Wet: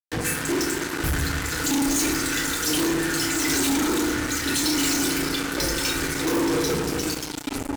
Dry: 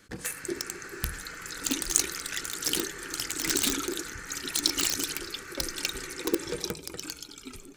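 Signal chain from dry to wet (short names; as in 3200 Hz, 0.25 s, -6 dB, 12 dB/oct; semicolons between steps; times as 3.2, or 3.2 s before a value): FDN reverb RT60 1.1 s, low-frequency decay 1.6×, high-frequency decay 0.3×, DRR -6.5 dB; fuzz box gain 34 dB, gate -33 dBFS; gain -7 dB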